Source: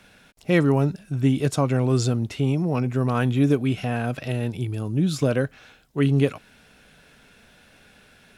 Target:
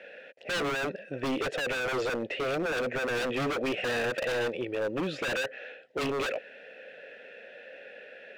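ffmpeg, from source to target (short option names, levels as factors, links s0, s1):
-filter_complex "[0:a]asplit=3[s0][s1][s2];[s0]bandpass=f=530:t=q:w=8,volume=1[s3];[s1]bandpass=f=1840:t=q:w=8,volume=0.501[s4];[s2]bandpass=f=2480:t=q:w=8,volume=0.355[s5];[s3][s4][s5]amix=inputs=3:normalize=0,asplit=2[s6][s7];[s7]highpass=f=720:p=1,volume=22.4,asoftclip=type=tanh:threshold=0.158[s8];[s6][s8]amix=inputs=2:normalize=0,lowpass=f=1200:p=1,volume=0.501,aeval=exprs='0.0422*(abs(mod(val(0)/0.0422+3,4)-2)-1)':c=same,volume=1.41"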